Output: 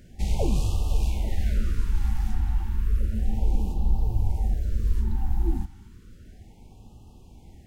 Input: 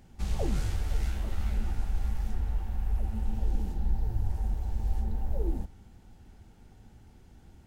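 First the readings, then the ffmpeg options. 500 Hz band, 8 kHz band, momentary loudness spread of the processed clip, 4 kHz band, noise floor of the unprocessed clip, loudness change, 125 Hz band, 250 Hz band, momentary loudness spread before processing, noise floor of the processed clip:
+4.0 dB, can't be measured, 2 LU, +5.5 dB, −55 dBFS, +5.5 dB, +5.5 dB, +5.5 dB, 2 LU, −50 dBFS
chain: -af "afftfilt=real='re*(1-between(b*sr/1024,490*pow(1800/490,0.5+0.5*sin(2*PI*0.32*pts/sr))/1.41,490*pow(1800/490,0.5+0.5*sin(2*PI*0.32*pts/sr))*1.41))':imag='im*(1-between(b*sr/1024,490*pow(1800/490,0.5+0.5*sin(2*PI*0.32*pts/sr))/1.41,490*pow(1800/490,0.5+0.5*sin(2*PI*0.32*pts/sr))*1.41))':win_size=1024:overlap=0.75,volume=5.5dB"

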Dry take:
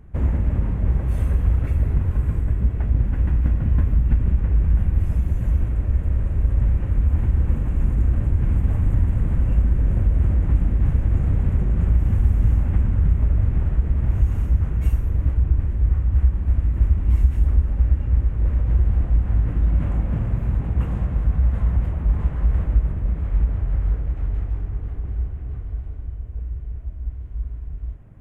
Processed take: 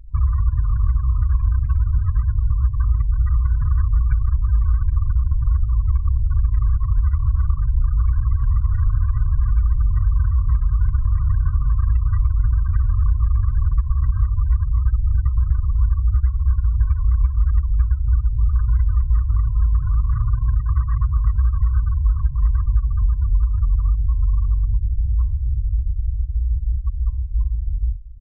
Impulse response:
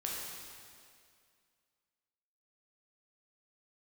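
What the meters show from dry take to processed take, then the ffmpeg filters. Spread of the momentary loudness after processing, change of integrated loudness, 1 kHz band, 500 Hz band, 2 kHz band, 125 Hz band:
3 LU, +1.0 dB, +2.5 dB, below −30 dB, −3.0 dB, +1.0 dB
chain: -filter_complex "[0:a]anlmdn=25.1,asplit=2[link_01][link_02];[link_02]adelay=227,lowpass=frequency=860:poles=1,volume=-18dB,asplit=2[link_03][link_04];[link_04]adelay=227,lowpass=frequency=860:poles=1,volume=0.23[link_05];[link_01][link_03][link_05]amix=inputs=3:normalize=0,asplit=2[link_06][link_07];[link_07]aeval=exprs='(mod(11.2*val(0)+1,2)-1)/11.2':channel_layout=same,volume=-10.5dB[link_08];[link_06][link_08]amix=inputs=2:normalize=0,lowshelf=frequency=130:gain=4,afftfilt=real='re*gte(hypot(re,im),0.0251)':imag='im*gte(hypot(re,im),0.0251)':win_size=1024:overlap=0.75,bandreject=frequency=352.8:width_type=h:width=4,bandreject=frequency=705.6:width_type=h:width=4,bandreject=frequency=1058.4:width_type=h:width=4,bandreject=frequency=1411.2:width_type=h:width=4,bandreject=frequency=1764:width_type=h:width=4,bandreject=frequency=2116.8:width_type=h:width=4,bandreject=frequency=2469.6:width_type=h:width=4,bandreject=frequency=2822.4:width_type=h:width=4,bandreject=frequency=3175.2:width_type=h:width=4,bandreject=frequency=3528:width_type=h:width=4,bandreject=frequency=3880.8:width_type=h:width=4,bandreject=frequency=4233.6:width_type=h:width=4,bandreject=frequency=4586.4:width_type=h:width=4,bandreject=frequency=4939.2:width_type=h:width=4,bandreject=frequency=5292:width_type=h:width=4,bandreject=frequency=5644.8:width_type=h:width=4,bandreject=frequency=5997.6:width_type=h:width=4,bandreject=frequency=6350.4:width_type=h:width=4,bandreject=frequency=6703.2:width_type=h:width=4,bandreject=frequency=7056:width_type=h:width=4,acompressor=threshold=-17dB:ratio=6,equalizer=frequency=1000:width_type=o:width=2.4:gain=10,afftfilt=real='re*(1-between(b*sr/4096,160,960))':imag='im*(1-between(b*sr/4096,160,960))':win_size=4096:overlap=0.75,aecho=1:1:2.6:0.72"

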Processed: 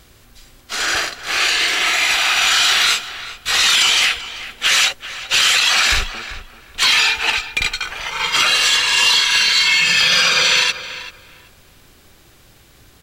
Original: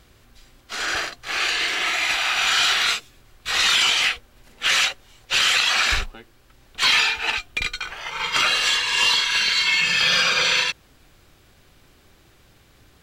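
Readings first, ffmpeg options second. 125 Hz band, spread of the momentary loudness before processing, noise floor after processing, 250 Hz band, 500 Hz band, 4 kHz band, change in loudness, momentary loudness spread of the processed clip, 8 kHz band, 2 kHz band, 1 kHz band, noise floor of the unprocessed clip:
+4.0 dB, 11 LU, −49 dBFS, +4.0 dB, +4.0 dB, +5.5 dB, +5.5 dB, 14 LU, +7.5 dB, +4.5 dB, +4.0 dB, −55 dBFS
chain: -filter_complex "[0:a]alimiter=limit=-11.5dB:level=0:latency=1:release=28,highshelf=frequency=4900:gain=6.5,asplit=2[link_01][link_02];[link_02]adelay=387,lowpass=frequency=2600:poles=1,volume=-12dB,asplit=2[link_03][link_04];[link_04]adelay=387,lowpass=frequency=2600:poles=1,volume=0.22,asplit=2[link_05][link_06];[link_06]adelay=387,lowpass=frequency=2600:poles=1,volume=0.22[link_07];[link_01][link_03][link_05][link_07]amix=inputs=4:normalize=0,volume=4.5dB"

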